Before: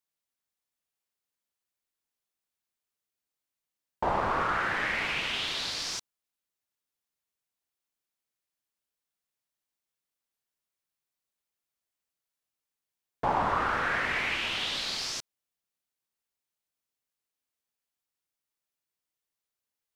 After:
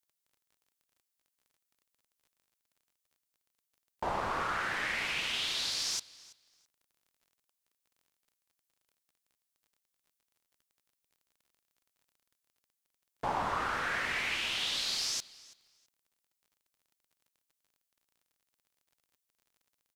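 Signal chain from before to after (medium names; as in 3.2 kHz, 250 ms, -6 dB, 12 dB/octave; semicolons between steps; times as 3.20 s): treble shelf 3.7 kHz +11.5 dB; feedback delay 330 ms, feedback 19%, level -21.5 dB; crackle 33 per s -49 dBFS; trim -6.5 dB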